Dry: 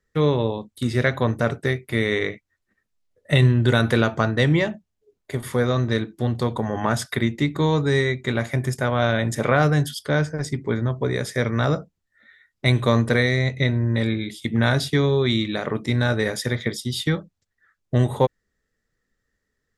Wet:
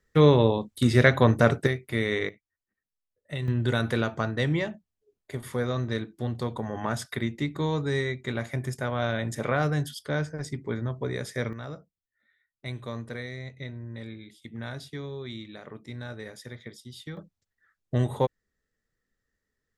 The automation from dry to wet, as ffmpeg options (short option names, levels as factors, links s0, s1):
-af "asetnsamples=n=441:p=0,asendcmd='1.67 volume volume -5dB;2.29 volume volume -16dB;3.48 volume volume -7.5dB;11.53 volume volume -17.5dB;17.17 volume volume -6dB',volume=1.26"